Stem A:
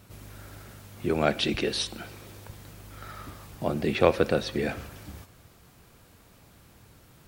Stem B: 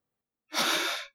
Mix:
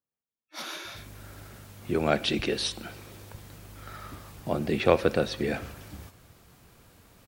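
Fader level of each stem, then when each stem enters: -0.5 dB, -11.0 dB; 0.85 s, 0.00 s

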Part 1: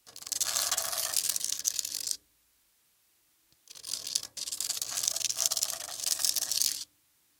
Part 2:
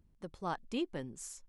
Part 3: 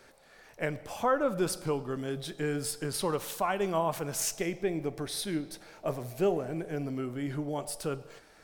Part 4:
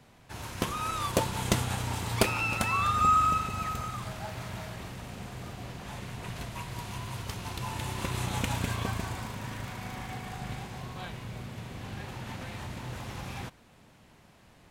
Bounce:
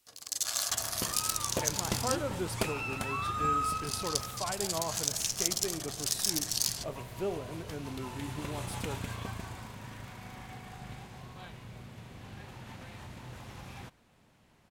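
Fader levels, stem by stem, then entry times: -2.5 dB, -4.5 dB, -7.0 dB, -7.0 dB; 0.00 s, 1.35 s, 1.00 s, 0.40 s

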